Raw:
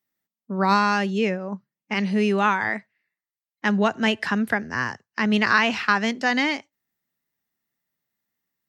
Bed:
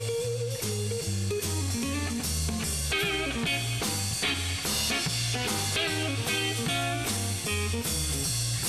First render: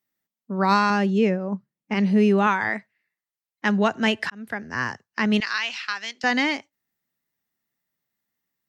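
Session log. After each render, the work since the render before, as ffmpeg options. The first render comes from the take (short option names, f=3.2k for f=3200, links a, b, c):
-filter_complex "[0:a]asettb=1/sr,asplit=3[a][b][c];[a]atrim=end=0.904[d];[b]atrim=start=0.9:end=2.47,asetpts=PTS-STARTPTS,afade=t=in:d=0.004:c=qsin,afade=t=out:st=1.566:d=0.004:c=qsin,tiltshelf=f=820:g=4.5[e];[c]atrim=start=2.466[f];[d][e]acrossfade=d=0.004:c1=hsin:c2=qsin[g];[g][f]acrossfade=d=0.004:c1=qsin:c2=hsin,asettb=1/sr,asplit=3[h][i][j];[h]atrim=end=5.404[k];[i]atrim=start=5.4:end=6.24,asetpts=PTS-STARTPTS,afade=t=in:d=0.004:c=qsin,afade=t=out:st=0.836:d=0.004:c=qsin,bandpass=f=4.4k:t=q:w=0.93[l];[j]atrim=start=6.236[m];[k][l]acrossfade=d=0.004:c1=hsin:c2=qsin[n];[n][m]acrossfade=d=0.004:c1=qsin:c2=hsin,asplit=2[o][p];[o]atrim=end=4.3,asetpts=PTS-STARTPTS,afade=t=out:st=4.296:d=0.004:c=hsin[q];[p]atrim=start=4.3,asetpts=PTS-STARTPTS,afade=t=in:d=0.55[r];[q][r]concat=n=2:v=0:a=1"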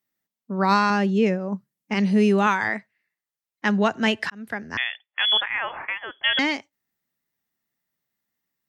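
-filter_complex "[0:a]asettb=1/sr,asplit=3[a][b][c];[a]atrim=end=1.264[d];[b]atrim=start=1.26:end=2.68,asetpts=PTS-STARTPTS,afade=t=in:d=0.004:c=qsin,afade=t=out:st=1.416:d=0.004:c=qsin,aemphasis=mode=production:type=cd[e];[c]atrim=start=2.676[f];[d][e]acrossfade=d=0.004:c1=hsin:c2=qsin[g];[g][f]acrossfade=d=0.004:c1=qsin:c2=hsin,asettb=1/sr,asplit=3[h][i][j];[h]atrim=end=4.774[k];[i]atrim=start=4.77:end=6.39,asetpts=PTS-STARTPTS,afade=t=in:d=0.004:c=qsin,afade=t=out:st=1.616:d=0.004:c=qsin,lowpass=f=3.1k:t=q:w=0.5098,lowpass=f=3.1k:t=q:w=0.6013,lowpass=f=3.1k:t=q:w=0.9,lowpass=f=3.1k:t=q:w=2.563,afreqshift=-3600[l];[j]atrim=start=6.386[m];[k][l]acrossfade=d=0.004:c1=hsin:c2=qsin[n];[n][m]acrossfade=d=0.004:c1=qsin:c2=hsin"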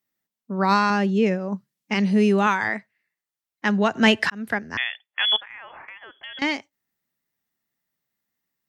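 -filter_complex "[0:a]asettb=1/sr,asplit=3[a][b][c];[a]atrim=end=1.314[d];[b]atrim=start=1.31:end=1.97,asetpts=PTS-STARTPTS,afade=t=in:d=0.004:c=qsin,afade=t=out:st=0.656:d=0.004:c=qsin,equalizer=f=4.1k:w=0.54:g=5.5[e];[c]atrim=start=1.966[f];[d][e]acrossfade=d=0.004:c1=hsin:c2=qsin[g];[g][f]acrossfade=d=0.004:c1=qsin:c2=hsin,asettb=1/sr,asplit=3[h][i][j];[h]atrim=end=3.954[k];[i]atrim=start=3.95:end=4.59,asetpts=PTS-STARTPTS,afade=t=in:d=0.004:c=qsin,afade=t=out:st=0.636:d=0.004:c=qsin,acontrast=37[l];[j]atrim=start=4.586[m];[k][l]acrossfade=d=0.004:c1=hsin:c2=qsin[n];[n][m]acrossfade=d=0.004:c1=qsin:c2=hsin,asettb=1/sr,asplit=3[o][p][q];[o]atrim=end=5.364[r];[p]atrim=start=5.36:end=6.42,asetpts=PTS-STARTPTS,afade=t=in:d=0.004:c=qsin,afade=t=out:st=1.056:d=0.004:c=qsin,acompressor=threshold=-41dB:ratio=3:attack=3.2:release=140:knee=1:detection=peak[s];[q]atrim=start=6.416[t];[r][s]acrossfade=d=0.004:c1=hsin:c2=qsin[u];[u][t]acrossfade=d=0.004:c1=qsin:c2=hsin"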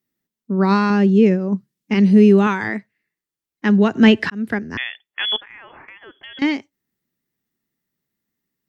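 -filter_complex "[0:a]acrossover=split=5200[a][b];[b]acompressor=threshold=-49dB:ratio=4:attack=1:release=60[c];[a][c]amix=inputs=2:normalize=0,lowshelf=f=490:t=q:w=1.5:g=7"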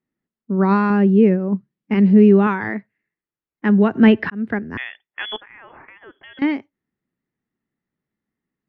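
-af "lowpass=2k"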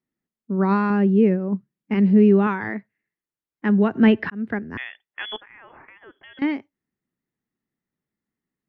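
-af "volume=-3.5dB"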